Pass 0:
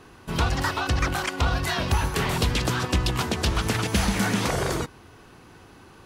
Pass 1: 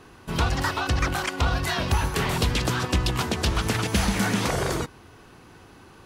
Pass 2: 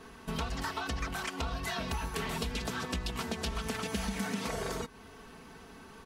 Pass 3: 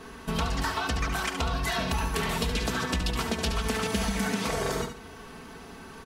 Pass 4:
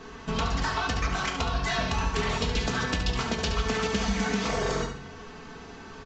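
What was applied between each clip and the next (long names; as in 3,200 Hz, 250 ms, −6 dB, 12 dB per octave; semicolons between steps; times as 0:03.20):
no processing that can be heard
comb filter 4.5 ms, depth 71%; downward compressor 3 to 1, threshold −32 dBFS, peak gain reduction 12.5 dB; level −3 dB
repeating echo 71 ms, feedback 28%, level −8 dB; level +6 dB
convolution reverb RT60 0.55 s, pre-delay 7 ms, DRR 6.5 dB; downsampling to 16,000 Hz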